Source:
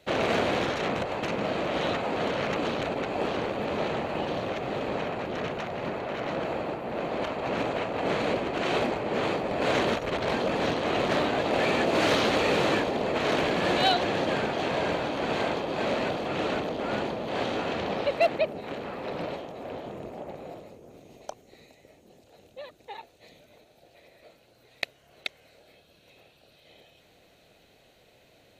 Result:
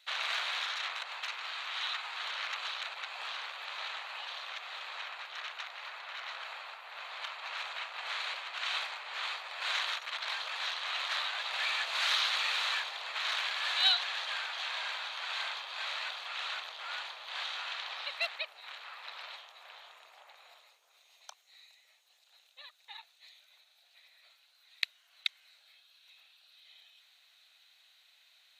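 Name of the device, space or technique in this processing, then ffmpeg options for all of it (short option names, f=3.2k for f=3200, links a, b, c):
headphones lying on a table: -filter_complex "[0:a]highpass=f=1.1k:w=0.5412,highpass=f=1.1k:w=1.3066,equalizer=f=3.8k:t=o:w=0.47:g=8,asettb=1/sr,asplit=3[a][b][c];[a]atrim=end=1.334[d];[b]atrim=start=1.33:end=2.25,asetpts=PTS-STARTPTS,afade=t=in:d=0.004:c=qsin,afade=t=out:st=0.916:d=0.004:c=qsin,equalizer=f=580:t=o:w=0.4:g=-7[e];[c]atrim=start=2.246[f];[d][e]acrossfade=d=0.004:c1=hsin:c2=qsin[g];[g][f]acrossfade=d=0.004:c1=qsin:c2=hsin,volume=-4dB"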